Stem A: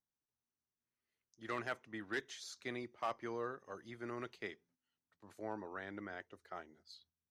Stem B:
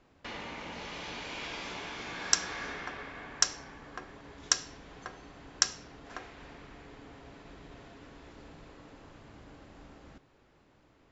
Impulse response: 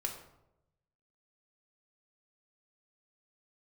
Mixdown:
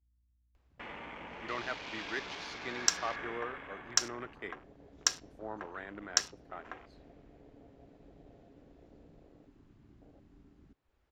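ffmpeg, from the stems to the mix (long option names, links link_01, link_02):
-filter_complex "[0:a]aeval=exprs='val(0)+0.000398*(sin(2*PI*60*n/s)+sin(2*PI*2*60*n/s)/2+sin(2*PI*3*60*n/s)/3+sin(2*PI*4*60*n/s)/4+sin(2*PI*5*60*n/s)/5)':channel_layout=same,volume=3dB[link_01];[1:a]acompressor=mode=upward:threshold=-51dB:ratio=2.5,adelay=550,volume=-2dB[link_02];[link_01][link_02]amix=inputs=2:normalize=0,afwtdn=0.00447,lowshelf=frequency=410:gain=-4.5"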